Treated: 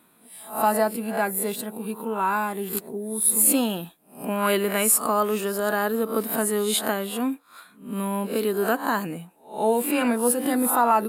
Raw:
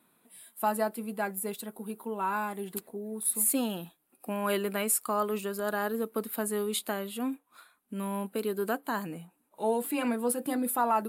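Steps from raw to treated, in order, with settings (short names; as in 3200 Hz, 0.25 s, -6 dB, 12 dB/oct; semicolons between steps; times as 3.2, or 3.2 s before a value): spectral swells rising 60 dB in 0.39 s; gain +6.5 dB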